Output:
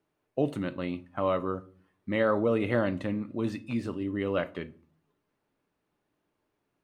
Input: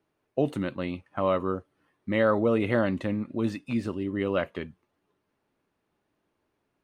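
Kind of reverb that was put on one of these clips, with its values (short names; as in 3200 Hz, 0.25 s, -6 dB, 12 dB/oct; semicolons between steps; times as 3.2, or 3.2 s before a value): shoebox room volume 390 m³, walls furnished, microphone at 0.41 m; gain -2.5 dB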